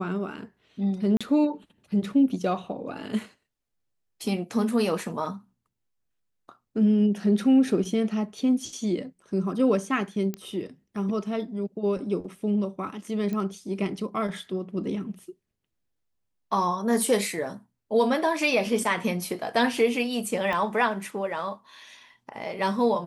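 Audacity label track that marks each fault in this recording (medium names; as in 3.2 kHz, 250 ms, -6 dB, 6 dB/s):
1.170000	1.210000	dropout 36 ms
10.340000	10.340000	pop -18 dBFS
13.330000	13.330000	pop -20 dBFS
20.530000	20.530000	pop -17 dBFS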